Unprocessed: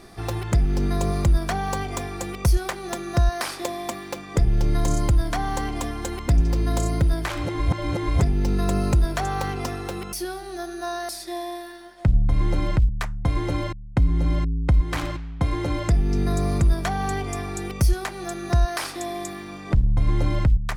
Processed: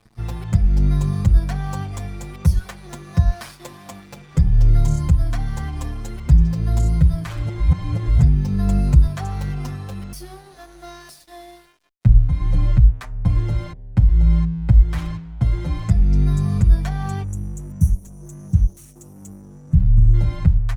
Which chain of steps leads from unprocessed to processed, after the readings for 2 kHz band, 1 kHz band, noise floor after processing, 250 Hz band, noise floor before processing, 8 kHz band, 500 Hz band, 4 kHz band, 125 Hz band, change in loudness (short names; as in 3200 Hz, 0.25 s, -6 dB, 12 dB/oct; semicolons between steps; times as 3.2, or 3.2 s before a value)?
-7.0 dB, -7.5 dB, -45 dBFS, +2.0 dB, -38 dBFS, -6.5 dB, -8.5 dB, -7.0 dB, +6.0 dB, +5.0 dB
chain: resonant low shelf 230 Hz +10.5 dB, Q 1.5; spectral delete 17.24–20.14, 350–5600 Hz; de-hum 91.58 Hz, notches 10; crossover distortion -37.5 dBFS; endless flanger 6.9 ms +1.5 Hz; gain -2.5 dB